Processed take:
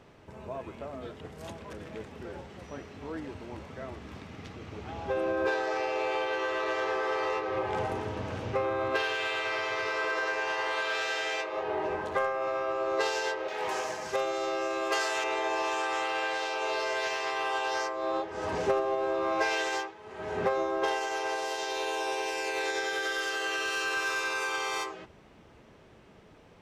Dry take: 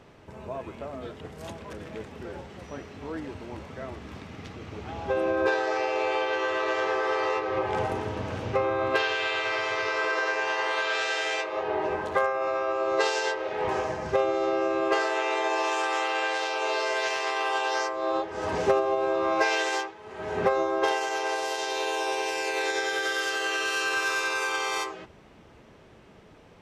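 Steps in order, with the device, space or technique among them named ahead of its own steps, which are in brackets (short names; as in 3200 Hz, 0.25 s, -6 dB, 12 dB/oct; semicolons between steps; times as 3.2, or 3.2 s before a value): 13.48–15.24 RIAA curve recording; parallel distortion (in parallel at -7 dB: hard clip -26 dBFS, distortion -10 dB); on the sum: gain -6 dB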